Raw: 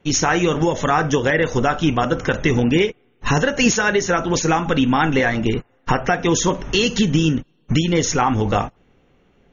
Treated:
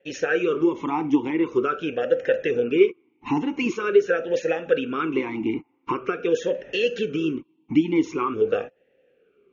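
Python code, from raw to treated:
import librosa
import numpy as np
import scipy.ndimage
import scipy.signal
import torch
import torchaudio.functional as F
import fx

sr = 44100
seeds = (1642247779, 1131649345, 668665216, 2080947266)

y = fx.vowel_sweep(x, sr, vowels='e-u', hz=0.45)
y = y * 10.0 ** (5.5 / 20.0)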